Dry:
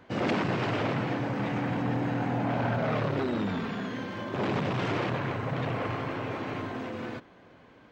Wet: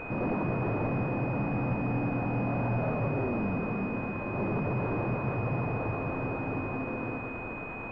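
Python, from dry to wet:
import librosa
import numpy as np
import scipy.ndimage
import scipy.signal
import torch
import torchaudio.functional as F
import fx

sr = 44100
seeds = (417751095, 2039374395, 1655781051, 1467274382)

p1 = x + fx.echo_heads(x, sr, ms=166, heads='all three', feedback_pct=50, wet_db=-14, dry=0)
p2 = 10.0 ** (-26.0 / 20.0) * np.tanh(p1 / 10.0 ** (-26.0 / 20.0))
p3 = fx.quant_dither(p2, sr, seeds[0], bits=6, dither='triangular')
p4 = fx.low_shelf(p3, sr, hz=99.0, db=8.0)
y = fx.pwm(p4, sr, carrier_hz=2500.0)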